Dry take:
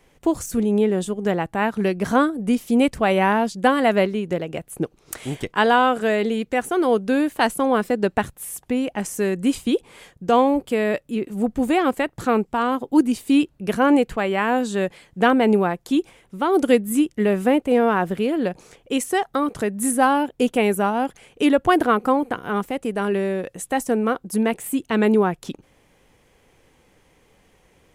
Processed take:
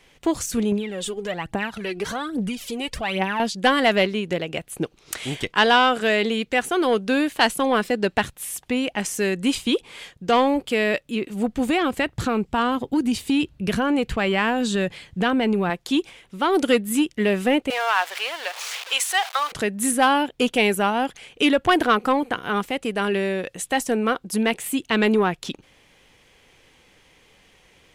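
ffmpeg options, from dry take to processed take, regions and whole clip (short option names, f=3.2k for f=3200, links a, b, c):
-filter_complex "[0:a]asettb=1/sr,asplit=3[a][b][c];[a]atrim=end=0.724[d];[b]atrim=start=0.72:end=3.4,asetpts=PTS-STARTPTS,afade=t=in:d=0.004:c=qsin,afade=t=out:st=2.676:d=0.004:c=qsin,acompressor=threshold=-28dB:ratio=2.5:attack=3.2:release=140:knee=1:detection=peak,aphaser=in_gain=1:out_gain=1:delay=2.8:decay=0.64:speed=1.2:type=triangular[e];[c]atrim=start=3.396[f];[d][e]acrossfade=d=0.004:c1=hsin:c2=qsin[g];[g][f]acrossfade=d=0.004:c1=qsin:c2=hsin,asettb=1/sr,asplit=3[h][i][j];[h]atrim=end=11.694[k];[i]atrim=start=11.69:end=15.7,asetpts=PTS-STARTPTS,afade=t=in:d=0.004:c=qsin,afade=t=out:st=4.006:d=0.004:c=qsin,equalizer=f=73:w=0.52:g=13,acompressor=threshold=-15dB:ratio=6:attack=3.2:release=140:knee=1:detection=peak[l];[j]atrim=start=15.696[m];[k][l]acrossfade=d=0.004:c1=hsin:c2=qsin[n];[n][m]acrossfade=d=0.004:c1=qsin:c2=hsin,asettb=1/sr,asplit=3[o][p][q];[o]atrim=end=17.704[r];[p]atrim=start=17.7:end=19.52,asetpts=PTS-STARTPTS,afade=t=in:d=0.004:c=qsin,afade=t=out:st=1.816:d=0.004:c=qsin,aeval=exprs='val(0)+0.5*0.0316*sgn(val(0))':c=same,highpass=f=710:w=0.5412,highpass=f=710:w=1.3066[s];[q]atrim=start=19.516[t];[r][s]acrossfade=d=0.004:c1=hsin:c2=qsin[u];[u][t]acrossfade=d=0.004:c1=qsin:c2=hsin,acontrast=66,equalizer=f=3.4k:t=o:w=2.2:g=10.5,volume=-8dB"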